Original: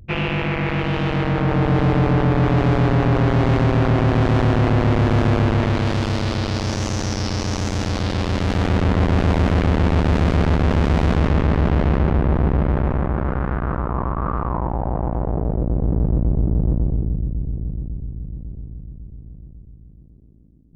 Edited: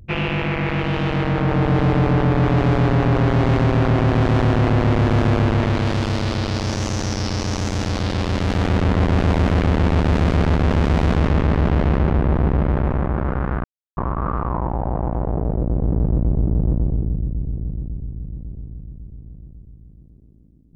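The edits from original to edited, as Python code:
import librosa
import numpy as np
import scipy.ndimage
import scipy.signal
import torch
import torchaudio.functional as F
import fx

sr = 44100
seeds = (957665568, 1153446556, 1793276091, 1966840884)

y = fx.edit(x, sr, fx.silence(start_s=13.64, length_s=0.33), tone=tone)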